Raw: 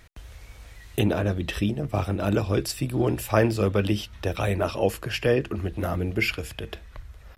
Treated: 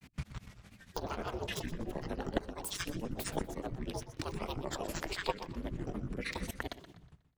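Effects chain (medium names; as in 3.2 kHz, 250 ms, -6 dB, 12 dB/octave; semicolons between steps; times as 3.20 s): fade out at the end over 1.86 s; hum notches 50/100/150/200/250/300/350/400/450 Hz; ring modulator 140 Hz; level held to a coarse grid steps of 23 dB; granulator, grains 13 per s, spray 34 ms, pitch spread up and down by 12 st; compression 3:1, threshold -51 dBFS, peak gain reduction 19 dB; modulated delay 122 ms, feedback 36%, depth 91 cents, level -13.5 dB; trim +15.5 dB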